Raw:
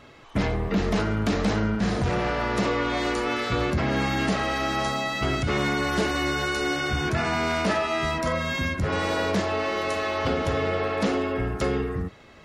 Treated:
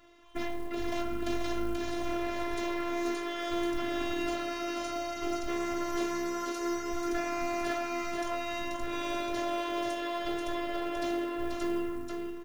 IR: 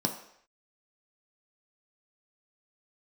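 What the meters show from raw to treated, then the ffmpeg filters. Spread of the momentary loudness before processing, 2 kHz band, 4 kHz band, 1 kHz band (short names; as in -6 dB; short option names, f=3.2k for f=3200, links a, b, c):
2 LU, -11.5 dB, -9.5 dB, -7.5 dB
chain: -filter_complex "[0:a]aecho=1:1:484:0.596,afftfilt=real='hypot(re,im)*cos(PI*b)':imag='0':win_size=512:overlap=0.75,asplit=2[a][b];[b]adelay=20,volume=-10dB[c];[a][c]amix=inputs=2:normalize=0,acrusher=bits=7:mode=log:mix=0:aa=0.000001,volume=-6dB"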